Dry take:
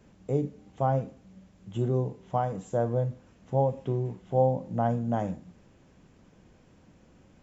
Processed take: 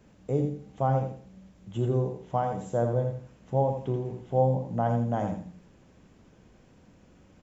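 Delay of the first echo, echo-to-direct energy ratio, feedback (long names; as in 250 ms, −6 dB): 84 ms, −6.0 dB, 28%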